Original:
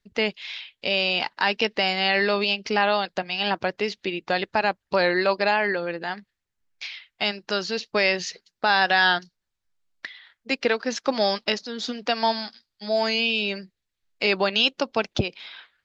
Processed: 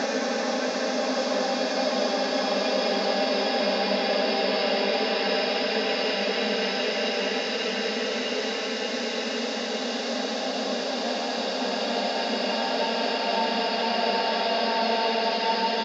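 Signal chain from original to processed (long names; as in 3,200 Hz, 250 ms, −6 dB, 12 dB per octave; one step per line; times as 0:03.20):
on a send: repeating echo 751 ms, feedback 52%, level −5 dB
on the sum: extreme stretch with random phases 12×, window 1.00 s, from 0:10.94
level −1.5 dB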